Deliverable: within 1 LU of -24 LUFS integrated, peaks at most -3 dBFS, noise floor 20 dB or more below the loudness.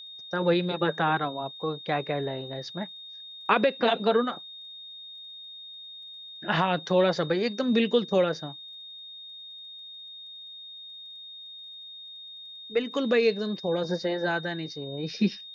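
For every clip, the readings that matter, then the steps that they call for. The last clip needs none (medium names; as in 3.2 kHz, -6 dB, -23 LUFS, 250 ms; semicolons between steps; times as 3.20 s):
tick rate 19 per s; steady tone 3.7 kHz; tone level -41 dBFS; loudness -27.0 LUFS; peak level -10.0 dBFS; loudness target -24.0 LUFS
-> de-click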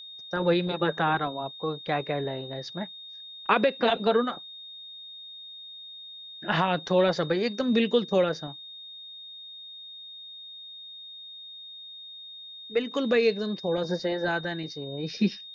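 tick rate 0.064 per s; steady tone 3.7 kHz; tone level -41 dBFS
-> band-stop 3.7 kHz, Q 30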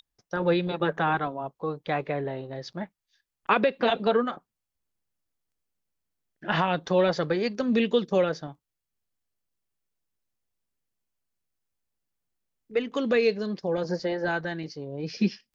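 steady tone not found; loudness -27.0 LUFS; peak level -10.0 dBFS; loudness target -24.0 LUFS
-> trim +3 dB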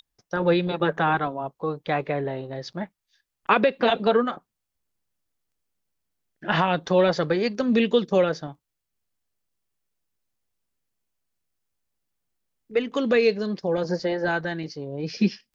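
loudness -24.0 LUFS; peak level -7.0 dBFS; noise floor -82 dBFS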